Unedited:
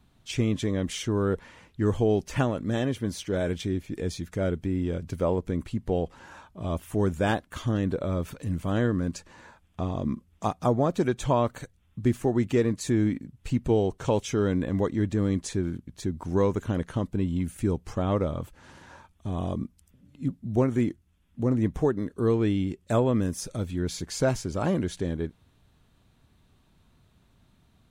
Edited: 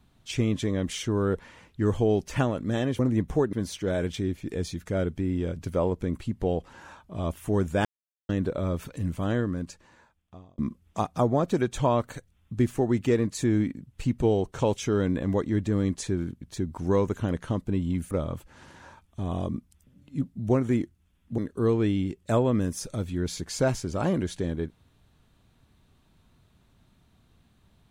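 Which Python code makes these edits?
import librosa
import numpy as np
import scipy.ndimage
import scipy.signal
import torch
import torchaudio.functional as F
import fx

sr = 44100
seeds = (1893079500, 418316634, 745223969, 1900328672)

y = fx.edit(x, sr, fx.silence(start_s=7.31, length_s=0.44),
    fx.fade_out_span(start_s=8.56, length_s=1.48),
    fx.cut(start_s=17.57, length_s=0.61),
    fx.move(start_s=21.45, length_s=0.54, to_s=2.99), tone=tone)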